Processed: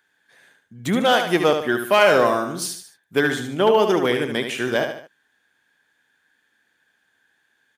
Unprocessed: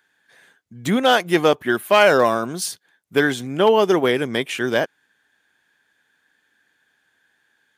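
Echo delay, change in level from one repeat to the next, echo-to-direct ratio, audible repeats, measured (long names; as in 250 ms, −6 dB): 74 ms, −7.5 dB, −6.0 dB, 3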